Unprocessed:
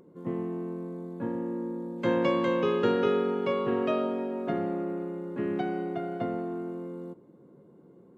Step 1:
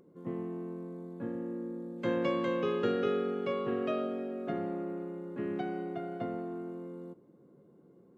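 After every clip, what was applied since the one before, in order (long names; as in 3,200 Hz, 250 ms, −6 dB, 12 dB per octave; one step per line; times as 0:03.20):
notch filter 930 Hz, Q 13
level −5 dB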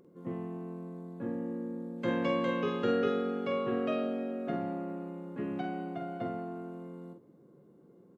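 double-tracking delay 47 ms −6 dB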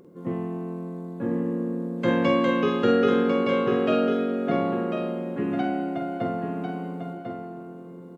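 single-tap delay 1,047 ms −7 dB
level +8.5 dB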